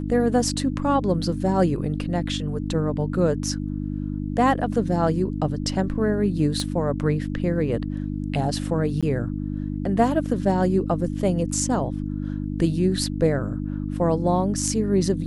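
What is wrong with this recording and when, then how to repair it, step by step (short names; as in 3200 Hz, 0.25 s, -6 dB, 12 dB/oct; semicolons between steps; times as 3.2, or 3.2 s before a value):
hum 50 Hz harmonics 6 -28 dBFS
6.6 pop -15 dBFS
9.01–9.03 gap 16 ms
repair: de-click; de-hum 50 Hz, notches 6; interpolate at 9.01, 16 ms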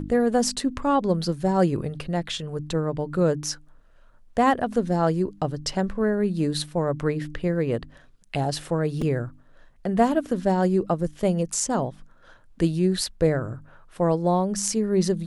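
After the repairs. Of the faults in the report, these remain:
6.6 pop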